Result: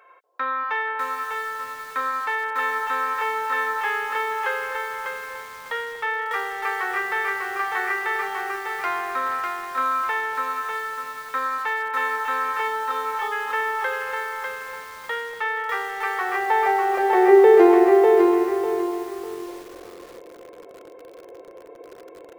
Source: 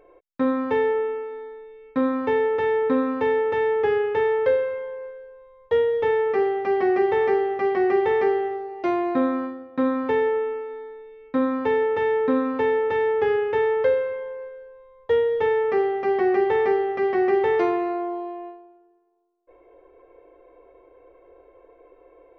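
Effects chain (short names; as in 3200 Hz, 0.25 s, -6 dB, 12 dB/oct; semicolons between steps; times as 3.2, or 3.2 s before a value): spectral delete 12.68–13.32, 1400–3000 Hz; in parallel at +1.5 dB: compressor 6:1, threshold -35 dBFS, peak gain reduction 17.5 dB; on the sum: high-pass sweep 1300 Hz -> 190 Hz, 16.08–18.31; on a send: echo with dull and thin repeats by turns 0.239 s, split 820 Hz, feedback 54%, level -9 dB; on the sum: lo-fi delay 0.598 s, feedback 35%, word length 7-bit, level -3 dB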